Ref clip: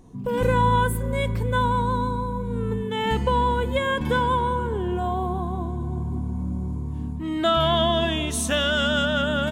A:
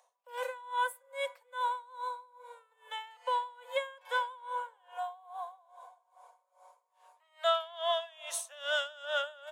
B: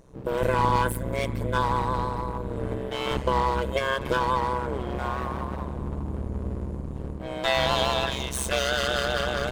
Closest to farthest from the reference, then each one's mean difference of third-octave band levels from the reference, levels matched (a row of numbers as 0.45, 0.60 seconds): B, A; 6.0, 16.0 decibels